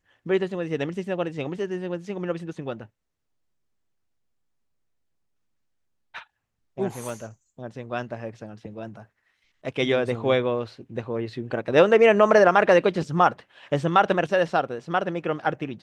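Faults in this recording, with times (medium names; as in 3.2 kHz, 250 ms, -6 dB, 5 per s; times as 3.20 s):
7.09 s: dropout 3.1 ms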